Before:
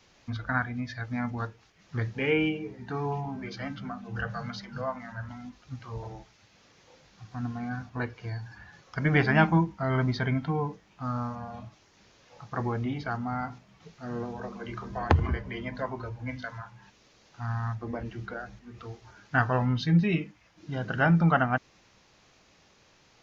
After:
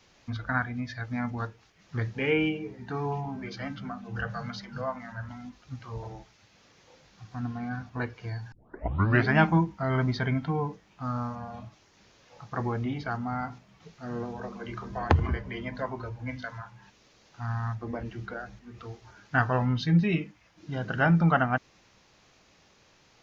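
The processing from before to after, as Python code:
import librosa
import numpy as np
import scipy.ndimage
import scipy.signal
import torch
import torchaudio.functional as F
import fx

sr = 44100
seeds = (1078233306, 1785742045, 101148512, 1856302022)

y = fx.lowpass(x, sr, hz=5900.0, slope=12, at=(7.4, 7.86))
y = fx.edit(y, sr, fx.tape_start(start_s=8.52, length_s=0.77), tone=tone)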